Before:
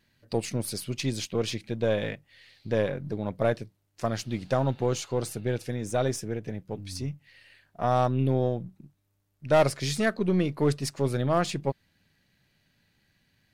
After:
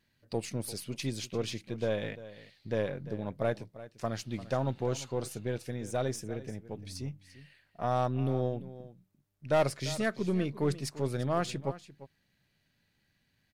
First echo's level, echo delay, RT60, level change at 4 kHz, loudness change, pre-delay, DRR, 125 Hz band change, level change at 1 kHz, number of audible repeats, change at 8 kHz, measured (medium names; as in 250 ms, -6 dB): -16.0 dB, 345 ms, no reverb, -5.5 dB, -5.5 dB, no reverb, no reverb, -5.5 dB, -5.5 dB, 1, -5.5 dB